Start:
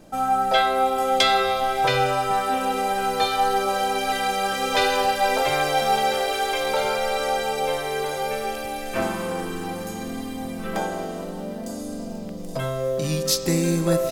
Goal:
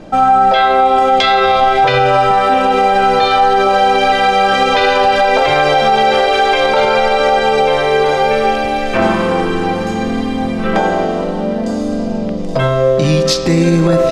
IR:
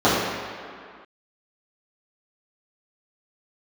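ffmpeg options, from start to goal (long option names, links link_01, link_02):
-filter_complex "[0:a]lowpass=4000,asplit=2[link_01][link_02];[1:a]atrim=start_sample=2205[link_03];[link_02][link_03]afir=irnorm=-1:irlink=0,volume=-40dB[link_04];[link_01][link_04]amix=inputs=2:normalize=0,alimiter=level_in=16dB:limit=-1dB:release=50:level=0:latency=1,volume=-2dB"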